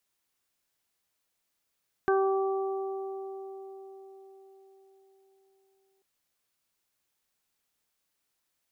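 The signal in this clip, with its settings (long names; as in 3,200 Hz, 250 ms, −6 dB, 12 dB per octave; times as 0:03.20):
harmonic partials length 3.94 s, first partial 387 Hz, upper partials −6.5/−8.5/−7 dB, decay 4.84 s, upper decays 4.43/2.88/0.39 s, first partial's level −22 dB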